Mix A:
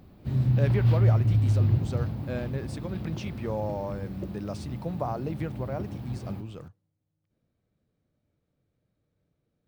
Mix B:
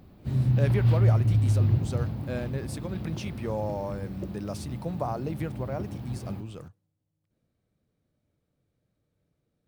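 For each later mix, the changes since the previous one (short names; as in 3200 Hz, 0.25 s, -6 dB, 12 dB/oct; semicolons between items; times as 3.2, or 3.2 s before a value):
speech: remove air absorption 60 m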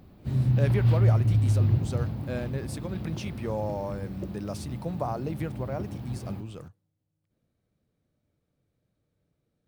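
none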